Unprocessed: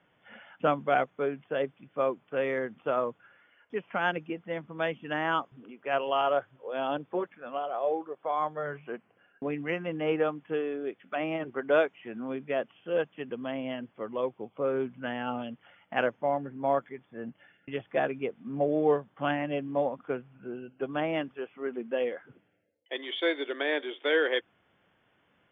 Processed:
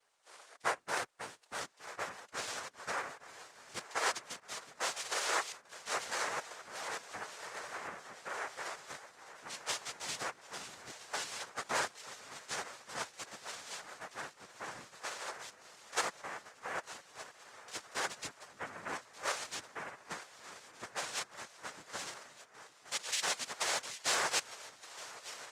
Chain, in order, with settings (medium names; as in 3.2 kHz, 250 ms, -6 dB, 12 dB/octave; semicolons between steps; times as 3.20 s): 4.96–5.56 s: zero-crossing glitches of -25 dBFS; harmonic-percussive split harmonic -7 dB; high-pass 1.4 kHz 12 dB/octave; shuffle delay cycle 1219 ms, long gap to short 3:1, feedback 71%, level -17 dB; noise-vocoded speech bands 3; trim +2 dB; Opus 32 kbps 48 kHz